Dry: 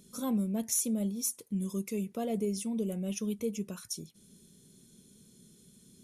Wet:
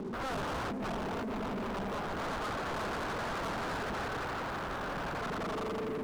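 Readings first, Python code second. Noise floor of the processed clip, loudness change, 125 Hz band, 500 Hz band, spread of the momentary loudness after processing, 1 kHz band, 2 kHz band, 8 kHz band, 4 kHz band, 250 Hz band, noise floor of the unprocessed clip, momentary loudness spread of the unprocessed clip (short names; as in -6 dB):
-38 dBFS, -2.5 dB, -2.0 dB, +1.5 dB, 1 LU, +14.5 dB, +18.0 dB, -16.0 dB, +3.0 dB, -6.0 dB, -61 dBFS, 10 LU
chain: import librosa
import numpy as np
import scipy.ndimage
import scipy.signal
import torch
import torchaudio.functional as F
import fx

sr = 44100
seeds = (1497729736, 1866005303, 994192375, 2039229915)

y = fx.reverse_delay_fb(x, sr, ms=147, feedback_pct=81, wet_db=-10)
y = fx.peak_eq(y, sr, hz=160.0, db=-6.5, octaves=1.8)
y = fx.echo_swell(y, sr, ms=85, loudest=5, wet_db=-8)
y = fx.over_compress(y, sr, threshold_db=-40.0, ratio=-1.0)
y = scipy.signal.sosfilt(scipy.signal.butter(4, 110.0, 'highpass', fs=sr, output='sos'), y)
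y = fx.peak_eq(y, sr, hz=340.0, db=11.0, octaves=1.6)
y = (np.mod(10.0 ** (34.0 / 20.0) * y + 1.0, 2.0) - 1.0) / 10.0 ** (34.0 / 20.0)
y = scipy.signal.sosfilt(scipy.signal.butter(8, 1600.0, 'lowpass', fs=sr, output='sos'), y)
y = fx.leveller(y, sr, passes=5)
y = y * 10.0 ** (-1.5 / 20.0)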